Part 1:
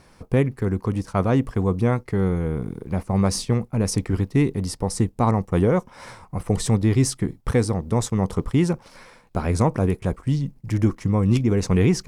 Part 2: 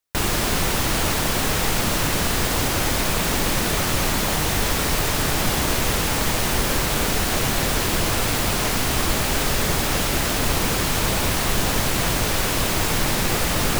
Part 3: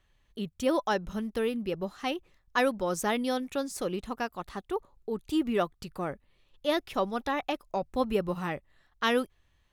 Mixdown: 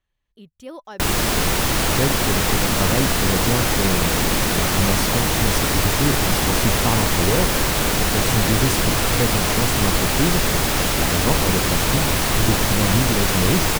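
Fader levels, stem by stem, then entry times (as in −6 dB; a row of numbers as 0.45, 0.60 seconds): −2.5, +2.0, −9.5 decibels; 1.65, 0.85, 0.00 seconds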